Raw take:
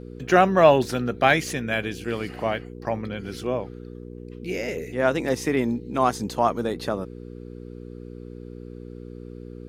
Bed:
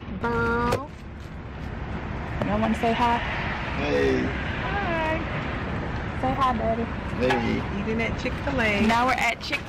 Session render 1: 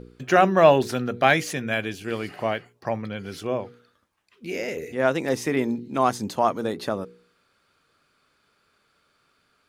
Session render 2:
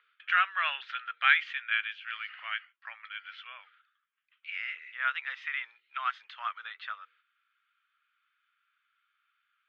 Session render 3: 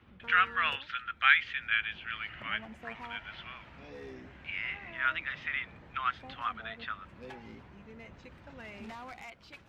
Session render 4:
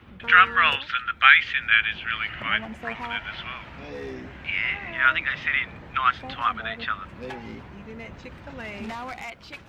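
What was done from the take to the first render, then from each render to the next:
de-hum 60 Hz, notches 8
gate -49 dBFS, range -7 dB; elliptic band-pass 1300–3300 Hz, stop band 70 dB
add bed -24 dB
gain +10.5 dB; limiter -1 dBFS, peak gain reduction 3 dB

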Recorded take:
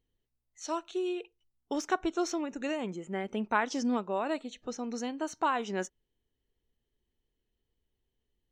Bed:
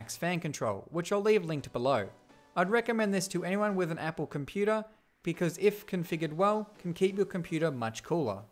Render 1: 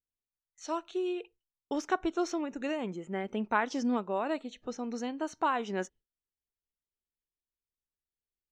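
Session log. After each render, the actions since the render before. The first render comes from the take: gate with hold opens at -54 dBFS; high shelf 6100 Hz -9 dB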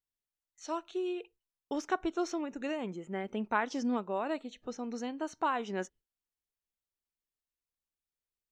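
gain -2 dB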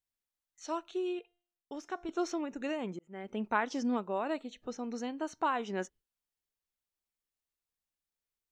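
1.19–2.09 resonator 350 Hz, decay 0.57 s; 2.99–3.42 fade in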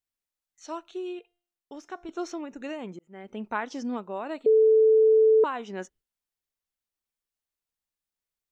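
4.46–5.44 bleep 439 Hz -15 dBFS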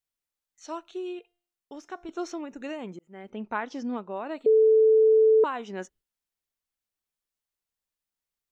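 3.3–4.37 air absorption 81 m

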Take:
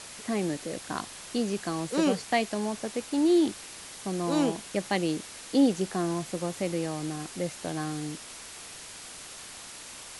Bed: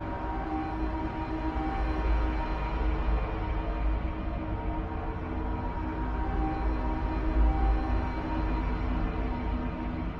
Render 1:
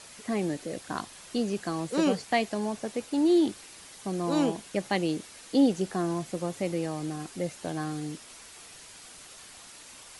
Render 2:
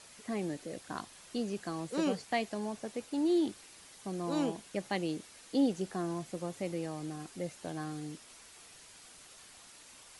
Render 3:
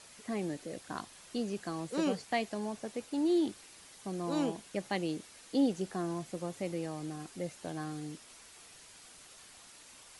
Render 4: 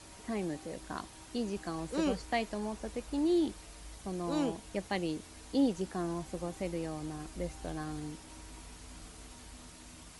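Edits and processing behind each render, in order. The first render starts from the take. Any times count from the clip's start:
denoiser 6 dB, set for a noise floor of -44 dBFS
gain -6.5 dB
nothing audible
add bed -21.5 dB

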